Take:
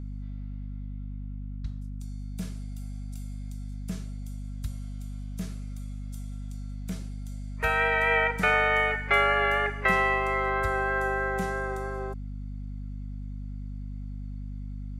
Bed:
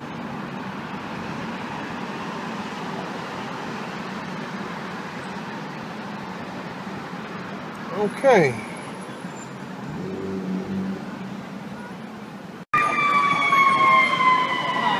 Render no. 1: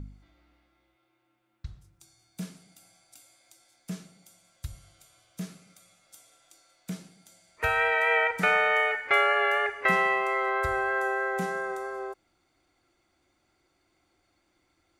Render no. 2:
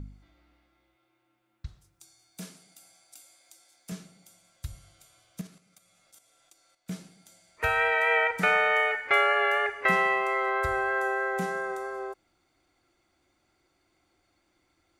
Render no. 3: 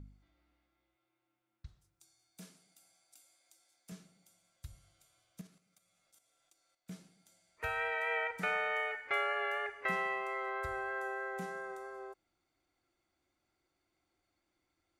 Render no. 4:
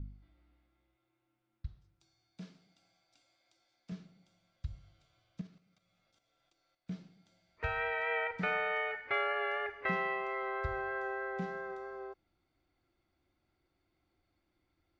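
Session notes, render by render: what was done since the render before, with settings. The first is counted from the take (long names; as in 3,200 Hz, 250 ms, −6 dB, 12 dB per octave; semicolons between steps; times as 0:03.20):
hum removal 50 Hz, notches 5
0:01.68–0:03.92: bass and treble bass −8 dB, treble +3 dB; 0:05.41–0:06.91: output level in coarse steps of 11 dB
level −11 dB
low-pass filter 4,900 Hz 24 dB per octave; low-shelf EQ 260 Hz +9.5 dB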